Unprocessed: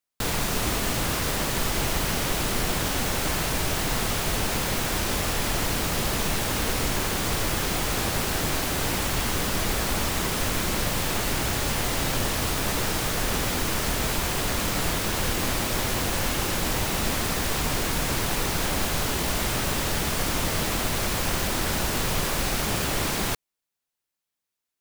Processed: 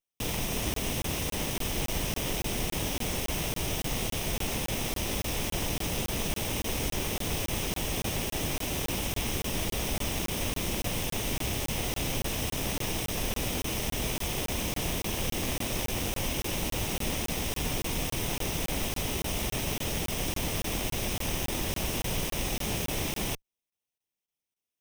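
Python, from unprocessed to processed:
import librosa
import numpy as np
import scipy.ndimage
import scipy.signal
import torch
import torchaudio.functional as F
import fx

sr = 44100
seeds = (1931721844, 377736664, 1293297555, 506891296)

y = fx.lower_of_two(x, sr, delay_ms=0.33)
y = fx.buffer_crackle(y, sr, first_s=0.74, period_s=0.28, block=1024, kind='zero')
y = y * librosa.db_to_amplitude(-4.0)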